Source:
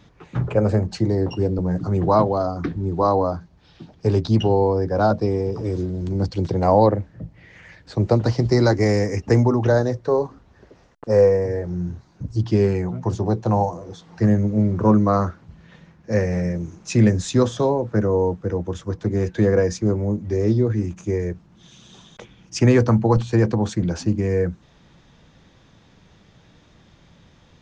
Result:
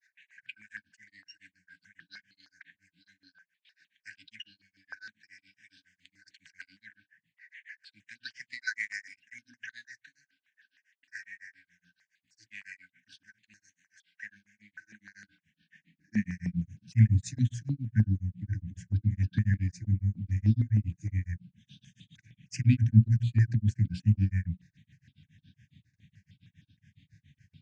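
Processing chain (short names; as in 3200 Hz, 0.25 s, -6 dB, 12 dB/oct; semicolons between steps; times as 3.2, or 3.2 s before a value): notches 60/120/180/240/300/360 Hz; gate with hold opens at -44 dBFS; high-pass sweep 1400 Hz -> 110 Hz, 14.86–16.65; grains 0.136 s, grains 7.2/s, spray 33 ms, pitch spread up and down by 0 st; brick-wall FIR band-stop 310–1500 Hz; step phaser 6.5 Hz 870–2000 Hz; gain -3 dB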